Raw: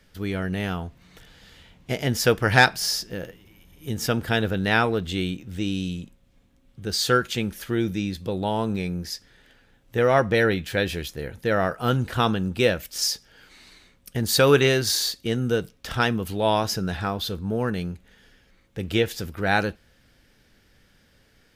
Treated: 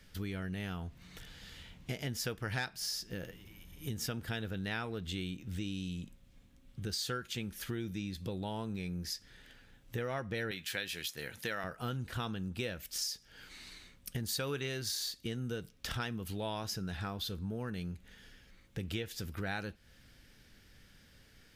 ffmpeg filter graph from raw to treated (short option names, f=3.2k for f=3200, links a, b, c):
-filter_complex "[0:a]asettb=1/sr,asplit=3[a][b][c];[a]atrim=end=10.514[d];[b]atrim=start=10.51:end=11.64,asetpts=PTS-STARTPTS,afade=t=in:d=0.004:c=qsin,afade=t=out:st=1.126:d=0.004:c=qsin,highpass=120,tiltshelf=f=800:g=-6.5[e];[c]atrim=start=11.636[f];[d][e]acrossfade=d=0.004:c1=hsin:c2=qsin[g];[g][f]acrossfade=d=0.004:c1=qsin:c2=hsin,equalizer=f=610:t=o:w=2.4:g=-5.5,acompressor=threshold=-37dB:ratio=4"